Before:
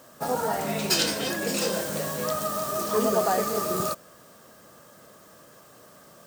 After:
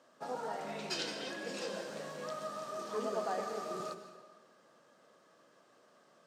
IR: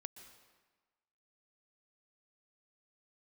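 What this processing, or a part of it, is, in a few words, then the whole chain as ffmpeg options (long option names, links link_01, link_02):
supermarket ceiling speaker: -filter_complex "[0:a]highpass=230,lowpass=5200[link_01];[1:a]atrim=start_sample=2205[link_02];[link_01][link_02]afir=irnorm=-1:irlink=0,volume=-7dB"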